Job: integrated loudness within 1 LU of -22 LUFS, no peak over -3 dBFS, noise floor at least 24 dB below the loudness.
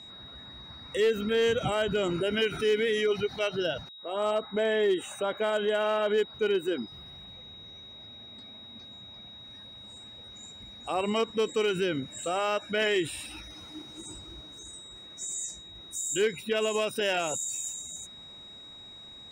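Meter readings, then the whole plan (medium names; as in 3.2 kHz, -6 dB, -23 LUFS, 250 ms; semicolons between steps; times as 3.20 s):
clipped samples 0.4%; clipping level -19.5 dBFS; steady tone 3.8 kHz; tone level -45 dBFS; loudness -29.0 LUFS; peak level -19.5 dBFS; loudness target -22.0 LUFS
-> clip repair -19.5 dBFS; band-stop 3.8 kHz, Q 30; trim +7 dB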